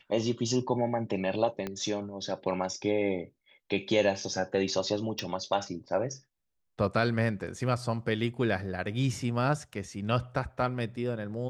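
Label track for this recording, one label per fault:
1.670000	1.670000	pop -20 dBFS
5.190000	5.190000	pop

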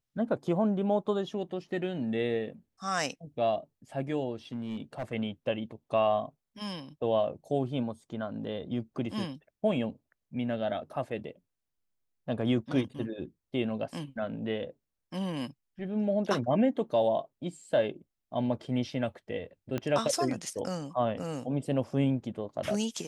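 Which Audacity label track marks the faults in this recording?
4.530000	5.120000	clipped -30 dBFS
19.780000	19.780000	pop -19 dBFS

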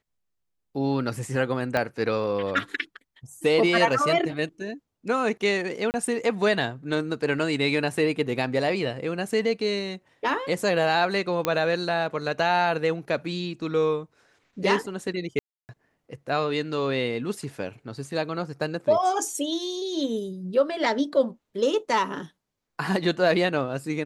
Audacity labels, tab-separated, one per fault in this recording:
1.770000	1.770000	pop -12 dBFS
5.910000	5.940000	gap 29 ms
11.450000	11.450000	pop -8 dBFS
15.390000	15.690000	gap 0.299 s

